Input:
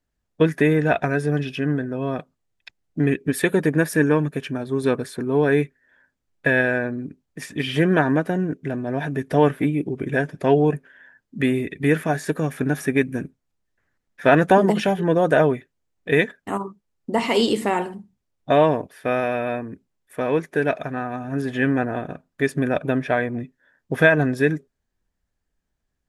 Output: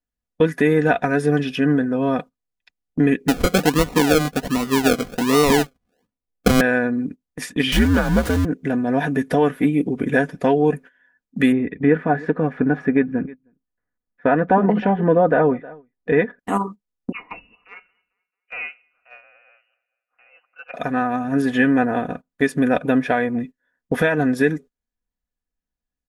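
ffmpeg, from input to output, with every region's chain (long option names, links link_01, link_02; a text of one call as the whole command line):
ffmpeg -i in.wav -filter_complex "[0:a]asettb=1/sr,asplit=3[link_01][link_02][link_03];[link_01]atrim=end=3.284[link_04];[link_02]atrim=start=3.28:end=6.61,asetpts=PTS-STARTPTS,afade=type=in:duration=0.004:curve=qsin,afade=type=out:start_time=3.326:duration=0.004:curve=qsin,highshelf=frequency=5800:width_type=q:width=1.5:gain=-10.5,acrusher=samples=38:mix=1:aa=0.000001:lfo=1:lforange=22.8:lforate=1.3[link_05];[link_03]atrim=start=6.606[link_06];[link_04][link_05]acrossfade=duration=0.004:curve1=hsin:curve2=qsin[link_07];[link_07][link_06]acrossfade=duration=0.004:curve1=qsin:curve2=hsin,asettb=1/sr,asplit=3[link_08][link_09][link_10];[link_08]atrim=end=7.724[link_11];[link_09]atrim=start=7.72:end=8.45,asetpts=PTS-STARTPTS,afade=type=in:duration=0.004:curve=qsin,afade=type=out:start_time=0.726:duration=0.004:curve=qsin,aeval=exprs='val(0)+0.5*0.0708*sgn(val(0))':channel_layout=same,bandreject=frequency=2700:width=25,afreqshift=-98[link_12];[link_10]atrim=start=8.446[link_13];[link_11][link_12]acrossfade=duration=0.004:curve1=hsin:curve2=qsin[link_14];[link_14][link_13]acrossfade=duration=0.004:curve1=qsin:curve2=hsin,asettb=1/sr,asplit=3[link_15][link_16][link_17];[link_15]atrim=end=11.524[link_18];[link_16]atrim=start=11.52:end=16.39,asetpts=PTS-STARTPTS,afade=type=in:duration=0.004:curve=qsin,afade=type=out:start_time=4.866:duration=0.004:curve=qsin,lowpass=1800,aemphasis=mode=reproduction:type=cd,aecho=1:1:313:0.0668,atrim=end_sample=214767[link_19];[link_17]atrim=start=16.386[link_20];[link_18][link_19]acrossfade=duration=0.004:curve1=hsin:curve2=qsin[link_21];[link_21][link_20]acrossfade=duration=0.004:curve1=qsin:curve2=hsin,asettb=1/sr,asplit=3[link_22][link_23][link_24];[link_22]atrim=end=17.124[link_25];[link_23]atrim=start=17.12:end=20.74,asetpts=PTS-STARTPTS,afade=type=in:duration=0.004:curve=qsin,afade=type=out:start_time=3.616:duration=0.004:curve=qsin,aderivative,aecho=1:1:221|442|663:0.1|0.042|0.0176,atrim=end_sample=159642,lowpass=frequency=2600:width_type=q:width=0.5098,lowpass=frequency=2600:width_type=q:width=0.6013,lowpass=frequency=2600:width_type=q:width=0.9,lowpass=frequency=2600:width_type=q:width=2.563,afreqshift=-3100[link_26];[link_24]atrim=start=20.736[link_27];[link_25][link_26]acrossfade=duration=0.004:curve1=hsin:curve2=qsin[link_28];[link_28][link_27]acrossfade=duration=0.004:curve1=qsin:curve2=hsin,agate=range=-16dB:threshold=-37dB:ratio=16:detection=peak,alimiter=limit=-11.5dB:level=0:latency=1:release=421,aecho=1:1:4.1:0.48,volume=4.5dB" out.wav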